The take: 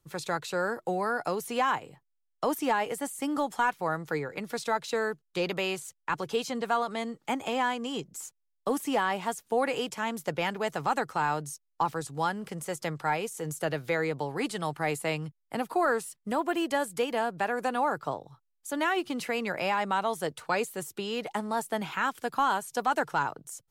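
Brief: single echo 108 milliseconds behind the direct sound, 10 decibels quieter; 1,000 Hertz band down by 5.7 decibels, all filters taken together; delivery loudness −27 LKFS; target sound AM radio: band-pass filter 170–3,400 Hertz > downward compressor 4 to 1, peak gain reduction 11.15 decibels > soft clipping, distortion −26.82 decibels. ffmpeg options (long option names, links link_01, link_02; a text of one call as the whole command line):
ffmpeg -i in.wav -af "highpass=170,lowpass=3400,equalizer=frequency=1000:width_type=o:gain=-7.5,aecho=1:1:108:0.316,acompressor=threshold=-37dB:ratio=4,asoftclip=threshold=-26dB,volume=14dB" out.wav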